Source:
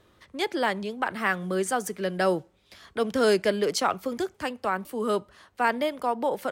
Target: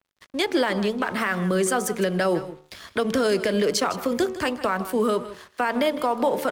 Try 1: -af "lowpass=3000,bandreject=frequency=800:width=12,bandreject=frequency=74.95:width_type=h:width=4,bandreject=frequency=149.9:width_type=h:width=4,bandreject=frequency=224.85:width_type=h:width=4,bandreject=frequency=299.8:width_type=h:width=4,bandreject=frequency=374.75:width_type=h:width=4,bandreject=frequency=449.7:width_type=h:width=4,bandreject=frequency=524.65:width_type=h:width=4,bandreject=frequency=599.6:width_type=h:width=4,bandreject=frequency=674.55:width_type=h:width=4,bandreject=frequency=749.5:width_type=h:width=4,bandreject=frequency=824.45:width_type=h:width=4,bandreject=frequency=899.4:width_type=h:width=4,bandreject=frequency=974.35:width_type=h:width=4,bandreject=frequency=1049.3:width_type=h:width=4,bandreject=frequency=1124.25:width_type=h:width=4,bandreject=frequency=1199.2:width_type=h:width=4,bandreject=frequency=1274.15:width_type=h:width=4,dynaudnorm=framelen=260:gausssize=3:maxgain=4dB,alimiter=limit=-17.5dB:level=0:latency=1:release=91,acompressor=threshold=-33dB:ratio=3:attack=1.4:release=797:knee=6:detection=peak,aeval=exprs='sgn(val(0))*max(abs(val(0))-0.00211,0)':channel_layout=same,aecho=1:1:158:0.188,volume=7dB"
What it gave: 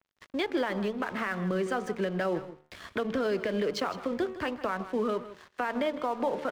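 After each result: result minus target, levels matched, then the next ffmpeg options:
downward compressor: peak gain reduction +7 dB; 4,000 Hz band −3.0 dB
-af "lowpass=3000,bandreject=frequency=800:width=12,bandreject=frequency=74.95:width_type=h:width=4,bandreject=frequency=149.9:width_type=h:width=4,bandreject=frequency=224.85:width_type=h:width=4,bandreject=frequency=299.8:width_type=h:width=4,bandreject=frequency=374.75:width_type=h:width=4,bandreject=frequency=449.7:width_type=h:width=4,bandreject=frequency=524.65:width_type=h:width=4,bandreject=frequency=599.6:width_type=h:width=4,bandreject=frequency=674.55:width_type=h:width=4,bandreject=frequency=749.5:width_type=h:width=4,bandreject=frequency=824.45:width_type=h:width=4,bandreject=frequency=899.4:width_type=h:width=4,bandreject=frequency=974.35:width_type=h:width=4,bandreject=frequency=1049.3:width_type=h:width=4,bandreject=frequency=1124.25:width_type=h:width=4,bandreject=frequency=1199.2:width_type=h:width=4,bandreject=frequency=1274.15:width_type=h:width=4,dynaudnorm=framelen=260:gausssize=3:maxgain=4dB,alimiter=limit=-17.5dB:level=0:latency=1:release=91,acompressor=threshold=-22dB:ratio=3:attack=1.4:release=797:knee=6:detection=peak,aeval=exprs='sgn(val(0))*max(abs(val(0))-0.00211,0)':channel_layout=same,aecho=1:1:158:0.188,volume=7dB"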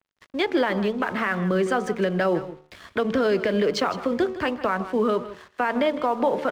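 4,000 Hz band −3.5 dB
-af "bandreject=frequency=800:width=12,bandreject=frequency=74.95:width_type=h:width=4,bandreject=frequency=149.9:width_type=h:width=4,bandreject=frequency=224.85:width_type=h:width=4,bandreject=frequency=299.8:width_type=h:width=4,bandreject=frequency=374.75:width_type=h:width=4,bandreject=frequency=449.7:width_type=h:width=4,bandreject=frequency=524.65:width_type=h:width=4,bandreject=frequency=599.6:width_type=h:width=4,bandreject=frequency=674.55:width_type=h:width=4,bandreject=frequency=749.5:width_type=h:width=4,bandreject=frequency=824.45:width_type=h:width=4,bandreject=frequency=899.4:width_type=h:width=4,bandreject=frequency=974.35:width_type=h:width=4,bandreject=frequency=1049.3:width_type=h:width=4,bandreject=frequency=1124.25:width_type=h:width=4,bandreject=frequency=1199.2:width_type=h:width=4,bandreject=frequency=1274.15:width_type=h:width=4,dynaudnorm=framelen=260:gausssize=3:maxgain=4dB,alimiter=limit=-17.5dB:level=0:latency=1:release=91,acompressor=threshold=-22dB:ratio=3:attack=1.4:release=797:knee=6:detection=peak,aeval=exprs='sgn(val(0))*max(abs(val(0))-0.00211,0)':channel_layout=same,aecho=1:1:158:0.188,volume=7dB"

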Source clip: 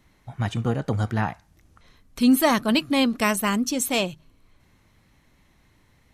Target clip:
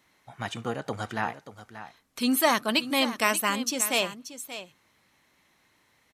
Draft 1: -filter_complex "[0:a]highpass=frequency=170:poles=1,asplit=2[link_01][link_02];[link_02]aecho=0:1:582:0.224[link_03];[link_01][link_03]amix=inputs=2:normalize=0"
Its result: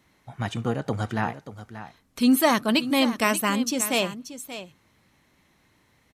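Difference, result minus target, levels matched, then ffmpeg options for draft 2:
125 Hz band +6.5 dB
-filter_complex "[0:a]highpass=frequency=620:poles=1,asplit=2[link_01][link_02];[link_02]aecho=0:1:582:0.224[link_03];[link_01][link_03]amix=inputs=2:normalize=0"

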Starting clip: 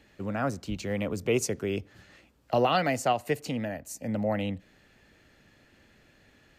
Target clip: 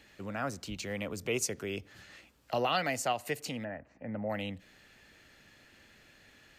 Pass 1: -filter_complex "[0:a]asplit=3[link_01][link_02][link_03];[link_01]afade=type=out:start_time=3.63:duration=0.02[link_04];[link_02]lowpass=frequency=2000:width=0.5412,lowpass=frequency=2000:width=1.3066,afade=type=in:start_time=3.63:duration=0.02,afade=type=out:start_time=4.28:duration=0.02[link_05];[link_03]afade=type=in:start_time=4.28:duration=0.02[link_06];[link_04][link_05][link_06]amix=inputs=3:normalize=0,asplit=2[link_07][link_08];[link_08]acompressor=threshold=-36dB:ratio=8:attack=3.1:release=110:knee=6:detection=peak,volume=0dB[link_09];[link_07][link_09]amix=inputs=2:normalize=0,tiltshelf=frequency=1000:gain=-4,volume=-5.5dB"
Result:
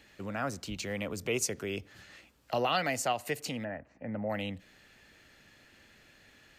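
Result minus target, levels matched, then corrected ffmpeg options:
downward compressor: peak gain reduction −6.5 dB
-filter_complex "[0:a]asplit=3[link_01][link_02][link_03];[link_01]afade=type=out:start_time=3.63:duration=0.02[link_04];[link_02]lowpass=frequency=2000:width=0.5412,lowpass=frequency=2000:width=1.3066,afade=type=in:start_time=3.63:duration=0.02,afade=type=out:start_time=4.28:duration=0.02[link_05];[link_03]afade=type=in:start_time=4.28:duration=0.02[link_06];[link_04][link_05][link_06]amix=inputs=3:normalize=0,asplit=2[link_07][link_08];[link_08]acompressor=threshold=-43.5dB:ratio=8:attack=3.1:release=110:knee=6:detection=peak,volume=0dB[link_09];[link_07][link_09]amix=inputs=2:normalize=0,tiltshelf=frequency=1000:gain=-4,volume=-5.5dB"

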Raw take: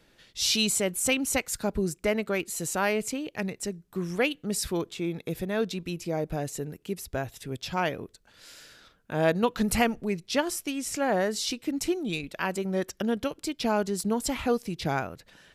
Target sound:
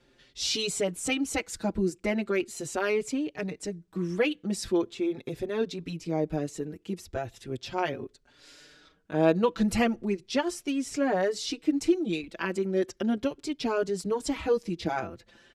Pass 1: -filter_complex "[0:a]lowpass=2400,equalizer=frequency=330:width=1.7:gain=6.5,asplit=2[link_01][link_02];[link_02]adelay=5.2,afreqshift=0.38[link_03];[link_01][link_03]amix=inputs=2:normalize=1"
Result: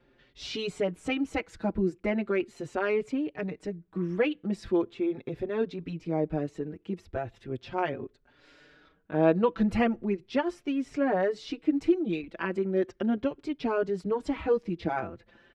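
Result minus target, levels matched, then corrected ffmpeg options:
8,000 Hz band −17.0 dB
-filter_complex "[0:a]lowpass=7600,equalizer=frequency=330:width=1.7:gain=6.5,asplit=2[link_01][link_02];[link_02]adelay=5.2,afreqshift=0.38[link_03];[link_01][link_03]amix=inputs=2:normalize=1"

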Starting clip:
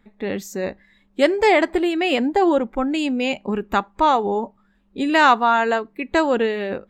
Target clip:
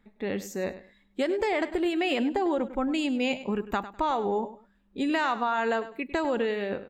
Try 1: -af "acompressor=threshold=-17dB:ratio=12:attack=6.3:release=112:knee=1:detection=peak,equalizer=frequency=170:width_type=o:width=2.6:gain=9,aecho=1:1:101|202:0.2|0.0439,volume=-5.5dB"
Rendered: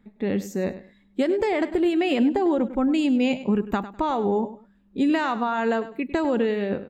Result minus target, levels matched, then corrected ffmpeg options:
125 Hz band +4.0 dB
-af "acompressor=threshold=-17dB:ratio=12:attack=6.3:release=112:knee=1:detection=peak,aecho=1:1:101|202:0.2|0.0439,volume=-5.5dB"

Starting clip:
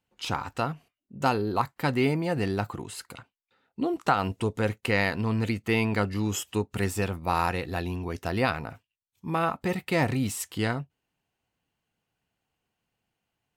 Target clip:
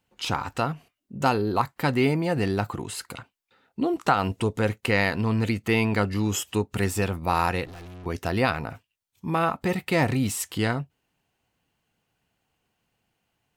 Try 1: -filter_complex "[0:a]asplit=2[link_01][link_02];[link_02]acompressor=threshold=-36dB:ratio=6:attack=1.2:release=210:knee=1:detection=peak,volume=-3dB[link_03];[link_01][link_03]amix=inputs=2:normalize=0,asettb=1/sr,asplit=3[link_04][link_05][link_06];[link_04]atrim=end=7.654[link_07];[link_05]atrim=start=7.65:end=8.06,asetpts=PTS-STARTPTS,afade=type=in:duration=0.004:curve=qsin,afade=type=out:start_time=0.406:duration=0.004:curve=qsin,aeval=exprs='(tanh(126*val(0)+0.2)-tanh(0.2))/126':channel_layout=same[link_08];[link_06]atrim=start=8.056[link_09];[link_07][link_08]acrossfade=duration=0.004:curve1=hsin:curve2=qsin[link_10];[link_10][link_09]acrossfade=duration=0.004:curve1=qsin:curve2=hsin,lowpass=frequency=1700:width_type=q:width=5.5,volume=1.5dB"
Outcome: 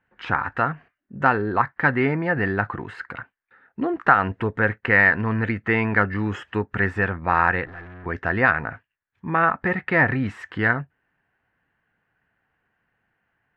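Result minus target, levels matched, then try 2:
2,000 Hz band +6.0 dB
-filter_complex "[0:a]asplit=2[link_01][link_02];[link_02]acompressor=threshold=-36dB:ratio=6:attack=1.2:release=210:knee=1:detection=peak,volume=-3dB[link_03];[link_01][link_03]amix=inputs=2:normalize=0,asettb=1/sr,asplit=3[link_04][link_05][link_06];[link_04]atrim=end=7.654[link_07];[link_05]atrim=start=7.65:end=8.06,asetpts=PTS-STARTPTS,afade=type=in:duration=0.004:curve=qsin,afade=type=out:start_time=0.406:duration=0.004:curve=qsin,aeval=exprs='(tanh(126*val(0)+0.2)-tanh(0.2))/126':channel_layout=same[link_08];[link_06]atrim=start=8.056[link_09];[link_07][link_08]acrossfade=duration=0.004:curve1=hsin:curve2=qsin[link_10];[link_10][link_09]acrossfade=duration=0.004:curve1=qsin:curve2=hsin,volume=1.5dB"

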